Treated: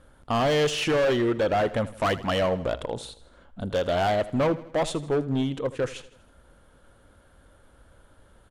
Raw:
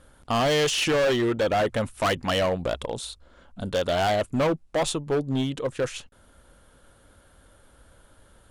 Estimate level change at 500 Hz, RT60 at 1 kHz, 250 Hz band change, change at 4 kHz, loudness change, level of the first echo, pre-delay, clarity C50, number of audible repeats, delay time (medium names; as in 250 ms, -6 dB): 0.0 dB, no reverb, 0.0 dB, -3.5 dB, -0.5 dB, -17.0 dB, no reverb, no reverb, 3, 80 ms